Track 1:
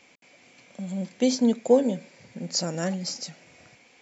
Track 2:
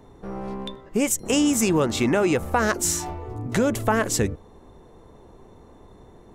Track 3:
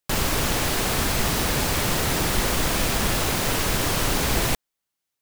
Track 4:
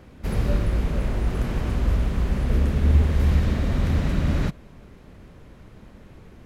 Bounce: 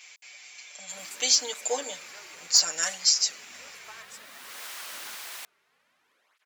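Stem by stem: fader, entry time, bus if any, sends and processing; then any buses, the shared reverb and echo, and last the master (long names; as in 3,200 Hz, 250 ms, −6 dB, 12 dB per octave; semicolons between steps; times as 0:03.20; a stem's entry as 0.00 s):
+1.0 dB, 0.00 s, no send, de-essing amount 50%; high-shelf EQ 3,400 Hz +11.5 dB; comb filter 6.6 ms, depth 92%
−19.5 dB, 0.00 s, no send, spectral dynamics exaggerated over time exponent 1.5
−13.5 dB, 0.90 s, no send, mains hum 50 Hz, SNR 18 dB; automatic ducking −21 dB, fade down 1.80 s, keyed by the first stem
−6.5 dB, 0.65 s, no send, through-zero flanger with one copy inverted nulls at 0.61 Hz, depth 4.1 ms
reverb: not used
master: high-pass filter 1,200 Hz 12 dB per octave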